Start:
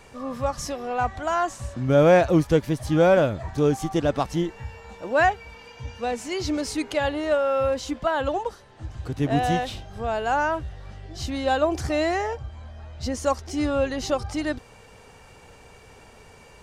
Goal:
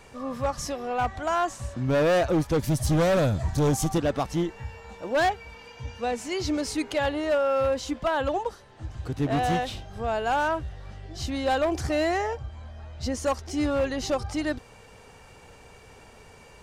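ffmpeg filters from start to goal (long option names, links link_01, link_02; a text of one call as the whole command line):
ffmpeg -i in.wav -filter_complex "[0:a]asettb=1/sr,asplit=3[link_01][link_02][link_03];[link_01]atrim=end=2.594[link_04];[link_02]atrim=start=2.59:end=3.98,asetpts=PTS-STARTPTS,afade=type=in:duration=0.004:curve=qsin,afade=type=out:start_time=1.386:duration=0.004:curve=qsin,bass=frequency=250:gain=8,treble=frequency=4000:gain=11[link_05];[link_03]atrim=start=3.976[link_06];[link_04][link_05]acrossfade=duration=0.004:curve1=hsin:curve2=qsin[link_07];[link_07][link_06]acrossfade=duration=0.004:curve1=qsin:curve2=hsin,volume=18dB,asoftclip=hard,volume=-18dB,volume=-1dB" out.wav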